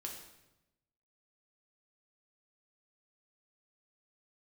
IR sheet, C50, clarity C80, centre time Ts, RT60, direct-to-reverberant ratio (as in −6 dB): 5.0 dB, 7.5 dB, 35 ms, 0.95 s, −0.5 dB